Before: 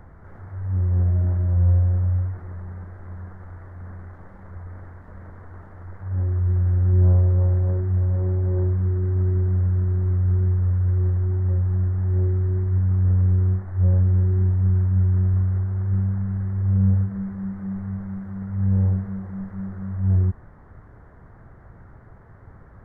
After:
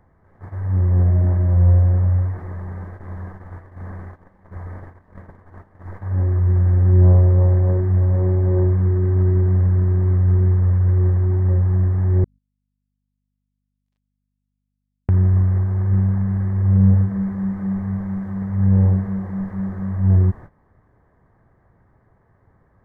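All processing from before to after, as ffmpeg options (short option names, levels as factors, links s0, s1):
-filter_complex "[0:a]asettb=1/sr,asplit=3[s0][s1][s2];[s0]atrim=end=12.244[s3];[s1]atrim=start=12.24:end=15.09,asetpts=PTS-STARTPTS,afade=t=in:d=0.004:c=qsin,afade=t=out:st=2.846:d=0.004:c=qsin,highpass=1200,aeval=exprs='sgn(val(0))*max(abs(val(0))-0.00794,0)':c=same,aeval=exprs='val(0)+0.000708*(sin(2*PI*50*n/s)+sin(2*PI*2*50*n/s)/2+sin(2*PI*3*50*n/s)/3+sin(2*PI*4*50*n/s)/4+sin(2*PI*5*50*n/s)/5)':c=same[s4];[s2]atrim=start=15.086[s5];[s3][s4]acrossfade=d=0.004:c1=hsin:c2=qsin[s6];[s6][s5]acrossfade=d=0.004:c1=qsin:c2=hsin,bandreject=f=1400:w=6.5,agate=range=0.158:threshold=0.0126:ratio=16:detection=peak,lowshelf=f=100:g=-7,volume=2.51"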